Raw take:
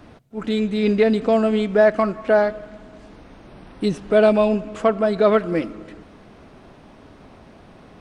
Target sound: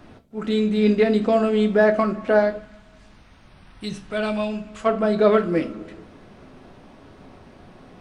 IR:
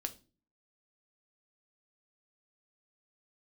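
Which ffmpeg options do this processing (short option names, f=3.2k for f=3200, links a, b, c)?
-filter_complex "[0:a]asplit=3[a][b][c];[a]afade=t=out:st=2.57:d=0.02[d];[b]equalizer=f=370:t=o:w=2.2:g=-14,afade=t=in:st=2.57:d=0.02,afade=t=out:st=4.85:d=0.02[e];[c]afade=t=in:st=4.85:d=0.02[f];[d][e][f]amix=inputs=3:normalize=0[g];[1:a]atrim=start_sample=2205[h];[g][h]afir=irnorm=-1:irlink=0"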